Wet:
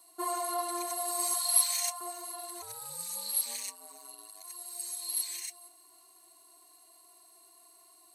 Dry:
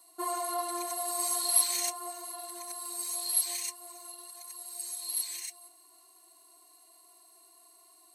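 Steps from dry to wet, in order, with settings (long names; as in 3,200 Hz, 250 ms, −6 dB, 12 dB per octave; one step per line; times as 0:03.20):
0:01.34–0:02.01: Chebyshev high-pass filter 750 Hz, order 3
surface crackle 410 per second −65 dBFS
0:02.61–0:04.43: ring modulation 270 Hz → 47 Hz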